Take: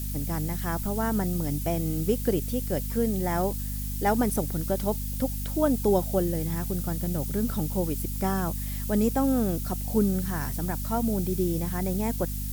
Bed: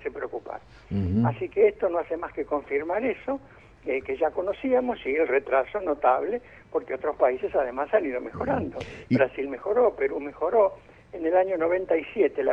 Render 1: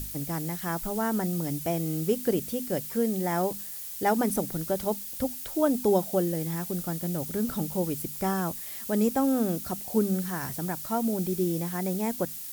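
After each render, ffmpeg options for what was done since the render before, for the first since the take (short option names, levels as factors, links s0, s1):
-af "bandreject=f=50:t=h:w=6,bandreject=f=100:t=h:w=6,bandreject=f=150:t=h:w=6,bandreject=f=200:t=h:w=6,bandreject=f=250:t=h:w=6"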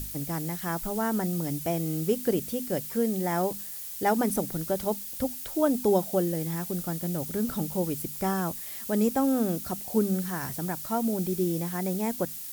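-af anull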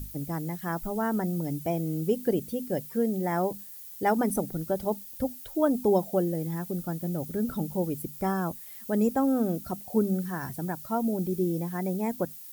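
-af "afftdn=nr=10:nf=-39"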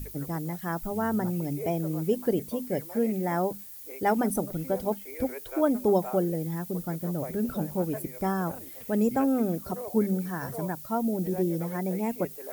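-filter_complex "[1:a]volume=0.126[s0];[0:a][s0]amix=inputs=2:normalize=0"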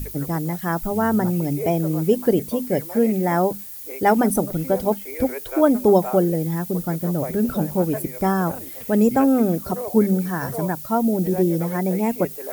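-af "volume=2.51"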